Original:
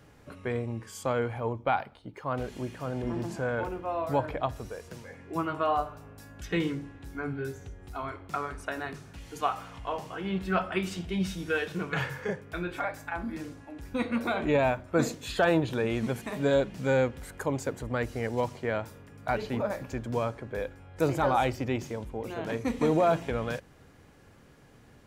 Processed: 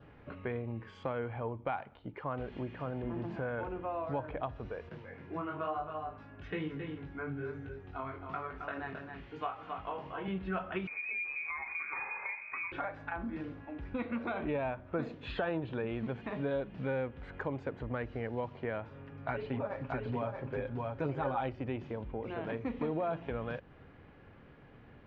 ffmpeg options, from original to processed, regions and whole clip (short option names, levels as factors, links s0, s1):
-filter_complex "[0:a]asettb=1/sr,asplit=3[s0][s1][s2];[s0]atrim=end=4.894[s3];[s1]atrim=start=4.89:end=10.28,asetpts=PTS-STARTPTS,afade=t=in:d=0.004:c=qsin,afade=t=out:st=5.386:d=0.004:c=qsin,highpass=75,flanger=delay=19:depth=3.9:speed=1.1,aecho=1:1:268:0.376,atrim=end_sample=237699[s4];[s2]atrim=start=10.276[s5];[s3][s4]acrossfade=d=0.004:c1=hsin:c2=qsin[s6];[s6][s5]acrossfade=d=0.004:c1=qsin:c2=hsin,asettb=1/sr,asplit=3[s7][s8][s9];[s7]atrim=end=10.874[s10];[s8]atrim=start=10.87:end=12.72,asetpts=PTS-STARTPTS,afade=t=in:d=0.004:c=qsin,afade=t=out:st=1.846:d=0.004:c=qsin,acompressor=threshold=0.0178:ratio=3:attack=3.2:release=140:knee=1:detection=peak,tiltshelf=f=1400:g=5,lowpass=f=2200:t=q:w=0.5098,lowpass=f=2200:t=q:w=0.6013,lowpass=f=2200:t=q:w=0.9,lowpass=f=2200:t=q:w=2.563,afreqshift=-2600[s11];[s9]atrim=start=12.716[s12];[s10][s11]acrossfade=d=0.004:c1=hsin:c2=qsin[s13];[s13][s12]acrossfade=d=0.004:c1=qsin:c2=hsin,asettb=1/sr,asplit=3[s14][s15][s16];[s14]atrim=end=18.904[s17];[s15]atrim=start=18.9:end=21.49,asetpts=PTS-STARTPTS,afade=t=in:d=0.004:c=qsin,afade=t=out:st=2.586:d=0.004:c=qsin,aecho=1:1:7.4:0.6,atrim=end_sample=114219,aecho=1:1:630:0.631,atrim=end_sample=114219[s18];[s16]atrim=start=21.486[s19];[s17][s18]acrossfade=d=0.004:c1=hsin:c2=qsin[s20];[s20][s19]acrossfade=d=0.004:c1=qsin:c2=hsin,lowpass=f=3000:w=0.5412,lowpass=f=3000:w=1.3066,adynamicequalizer=threshold=0.002:dfrequency=2100:dqfactor=3.8:tfrequency=2100:tqfactor=3.8:attack=5:release=100:ratio=0.375:range=2:mode=cutabove:tftype=bell,acompressor=threshold=0.0158:ratio=2.5"